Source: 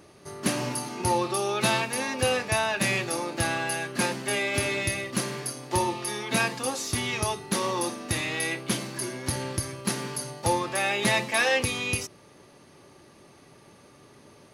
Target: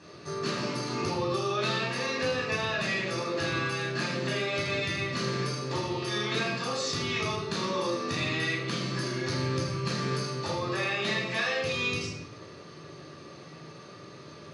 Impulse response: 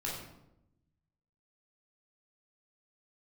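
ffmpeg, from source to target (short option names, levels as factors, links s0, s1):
-filter_complex "[0:a]acompressor=threshold=0.0224:ratio=6,highpass=120,equalizer=f=120:t=q:w=4:g=-4,equalizer=f=250:t=q:w=4:g=-5,equalizer=f=830:t=q:w=4:g=-9,equalizer=f=1200:t=q:w=4:g=5,equalizer=f=4300:t=q:w=4:g=5,lowpass=f=6800:w=0.5412,lowpass=f=6800:w=1.3066[s0];[1:a]atrim=start_sample=2205[s1];[s0][s1]afir=irnorm=-1:irlink=0,volume=1.5"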